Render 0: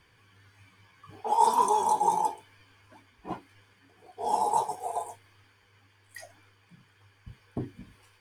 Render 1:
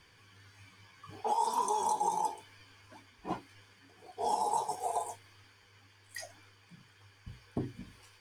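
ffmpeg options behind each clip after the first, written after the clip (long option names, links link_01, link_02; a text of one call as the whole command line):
ffmpeg -i in.wav -af "bandreject=frequency=60:width_type=h:width=6,bandreject=frequency=120:width_type=h:width=6,acompressor=threshold=-28dB:ratio=6,equalizer=frequency=5500:width=0.95:gain=6" out.wav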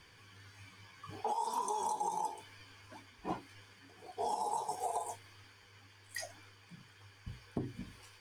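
ffmpeg -i in.wav -af "acompressor=threshold=-35dB:ratio=4,volume=1.5dB" out.wav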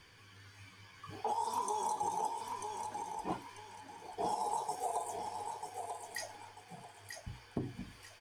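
ffmpeg -i in.wav -af "aecho=1:1:941|1882|2823|3764:0.501|0.14|0.0393|0.011" out.wav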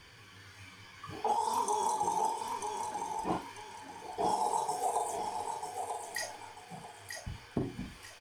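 ffmpeg -i in.wav -filter_complex "[0:a]asplit=2[link_01][link_02];[link_02]adelay=44,volume=-6dB[link_03];[link_01][link_03]amix=inputs=2:normalize=0,volume=4dB" out.wav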